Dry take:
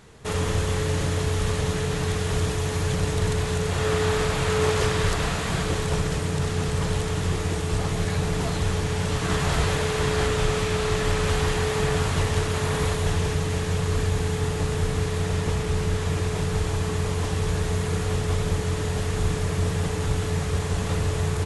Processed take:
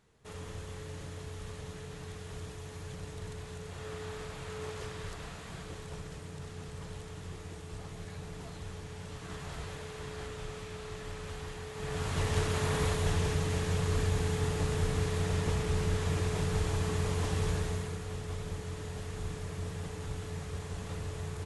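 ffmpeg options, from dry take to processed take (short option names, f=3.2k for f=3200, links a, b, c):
-af "volume=-6dB,afade=t=in:st=11.74:d=0.65:silence=0.237137,afade=t=out:st=17.46:d=0.52:silence=0.398107"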